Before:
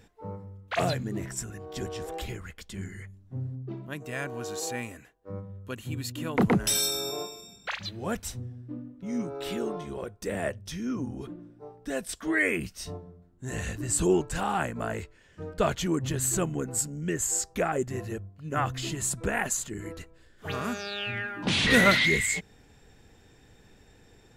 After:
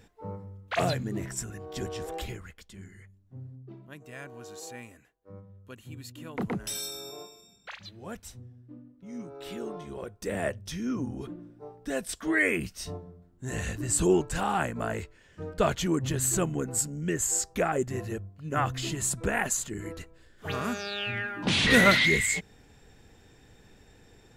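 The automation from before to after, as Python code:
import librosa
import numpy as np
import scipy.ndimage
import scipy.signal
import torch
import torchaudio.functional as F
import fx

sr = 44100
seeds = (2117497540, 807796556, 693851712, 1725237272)

y = fx.gain(x, sr, db=fx.line((2.21, 0.0), (2.79, -9.0), (9.11, -9.0), (10.41, 0.5)))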